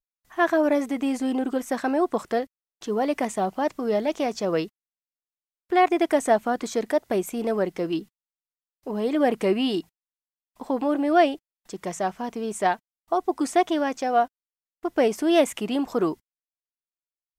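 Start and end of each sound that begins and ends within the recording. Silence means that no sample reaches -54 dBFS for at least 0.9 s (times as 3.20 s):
5.70–16.18 s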